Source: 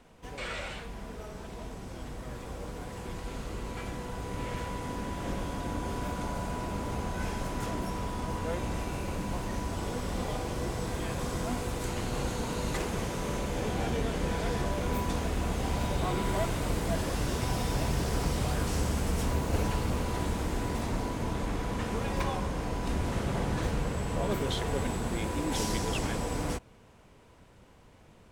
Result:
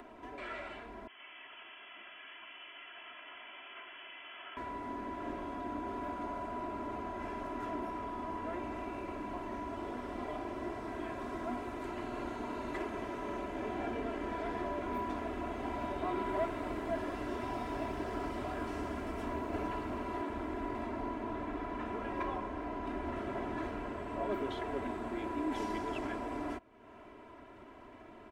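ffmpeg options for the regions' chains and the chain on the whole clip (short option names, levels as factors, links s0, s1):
-filter_complex "[0:a]asettb=1/sr,asplit=3[s0][s1][s2];[s0]atrim=end=1.074[s3];[s1]atrim=start=1.07:end=4.57,asetpts=PTS-STARTPTS,afade=t=in:d=0.004:c=qsin,afade=t=out:st=3.496:d=0.004:c=qsin,highpass=f=1200:p=1,lowpass=f=3000:t=q:w=0.5098,lowpass=f=3000:t=q:w=0.6013,lowpass=f=3000:t=q:w=0.9,lowpass=f=3000:t=q:w=2.563,afreqshift=-3500[s4];[s2]atrim=start=4.566[s5];[s3][s4]acrossfade=d=0.004:c1=hsin:c2=qsin[s6];[s6][s5]acrossfade=d=0.004:c1=qsin:c2=hsin,asettb=1/sr,asplit=3[s7][s8][s9];[s7]atrim=end=20.214[s10];[s8]atrim=start=20.21:end=23.16,asetpts=PTS-STARTPTS,afade=t=in:d=0.004:c=qsin,afade=t=out:st=2.946:d=0.004:c=qsin,bass=f=250:g=2,treble=f=4000:g=-3,acrossover=split=160[s11][s12];[s11]adelay=70[s13];[s13][s12]amix=inputs=2:normalize=0,atrim=end_sample=130095[s14];[s9]atrim=start=23.156[s15];[s10][s14]acrossfade=d=0.004:c1=hsin:c2=qsin[s16];[s16][s15]acrossfade=d=0.004:c1=qsin:c2=hsin,acrossover=split=160 2600:gain=0.178 1 0.112[s17][s18][s19];[s17][s18][s19]amix=inputs=3:normalize=0,aecho=1:1:3:0.9,acompressor=mode=upward:threshold=0.0158:ratio=2.5,volume=0.501"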